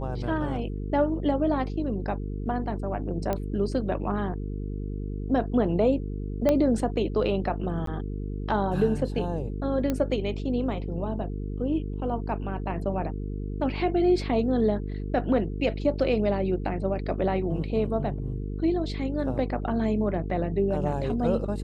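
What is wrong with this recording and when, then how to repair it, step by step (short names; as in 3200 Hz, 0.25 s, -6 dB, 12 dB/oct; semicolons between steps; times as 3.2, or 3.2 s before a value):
buzz 50 Hz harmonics 9 -32 dBFS
3.33 pop -15 dBFS
6.49 pop -11 dBFS
7.86–7.87 gap 13 ms
9.9 pop -14 dBFS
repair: de-click; de-hum 50 Hz, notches 9; interpolate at 7.86, 13 ms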